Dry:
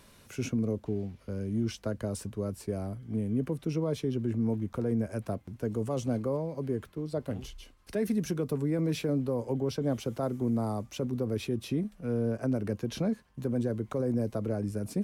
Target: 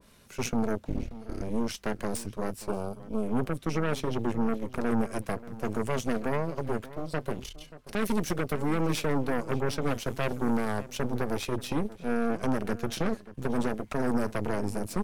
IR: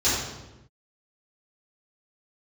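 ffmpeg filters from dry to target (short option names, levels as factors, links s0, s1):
-filter_complex "[0:a]flanger=delay=4.2:depth=2.2:regen=-59:speed=0.65:shape=triangular,asettb=1/sr,asplit=3[s0][s1][s2];[s0]atrim=end=0.854[s3];[s1]atrim=start=0.85:end=1.42,asetpts=PTS-STARTPTS,afade=t=in:d=0.004:c=qsin,afade=t=out:st=0.566:d=0.004:c=qsin,afreqshift=-160[s4];[s2]atrim=start=1.416[s5];[s3][s4]acrossfade=d=0.004:c1=hsin:c2=qsin[s6];[s6][s5]acrossfade=d=0.004:c1=qsin:c2=hsin,aeval=exprs='0.0708*(cos(1*acos(clip(val(0)/0.0708,-1,1)))-cos(1*PI/2))+0.02*(cos(6*acos(clip(val(0)/0.0708,-1,1)))-cos(6*PI/2))':c=same,asettb=1/sr,asplit=3[s7][s8][s9];[s7]atrim=end=2.684[s10];[s8]atrim=start=2.68:end=3.23,asetpts=PTS-STARTPTS,afade=t=in:d=0.004:c=qsin,afade=t=out:st=0.546:d=0.004:c=qsin,asuperstop=centerf=1900:order=4:qfactor=2.3[s11];[s9]atrim=start=3.226[s12];[s10][s11]acrossfade=d=0.004:c1=hsin:c2=qsin[s13];[s13][s12]acrossfade=d=0.004:c1=qsin:c2=hsin,asplit=2[s14][s15];[s15]adelay=583.1,volume=0.158,highshelf=f=4000:g=-13.1[s16];[s14][s16]amix=inputs=2:normalize=0,adynamicequalizer=threshold=0.00282:dfrequency=1500:dqfactor=0.7:tfrequency=1500:tqfactor=0.7:attack=5:release=100:ratio=0.375:range=2.5:mode=boostabove:tftype=highshelf,volume=1.41"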